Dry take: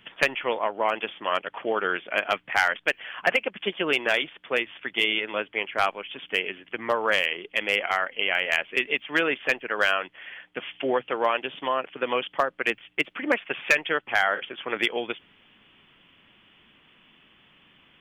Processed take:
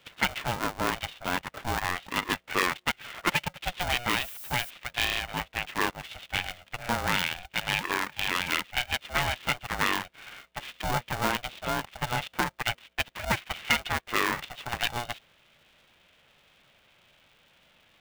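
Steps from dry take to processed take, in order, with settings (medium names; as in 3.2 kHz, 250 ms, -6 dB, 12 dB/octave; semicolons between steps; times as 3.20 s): 4.07–4.69 s: added noise violet -38 dBFS; polarity switched at an audio rate 360 Hz; trim -4 dB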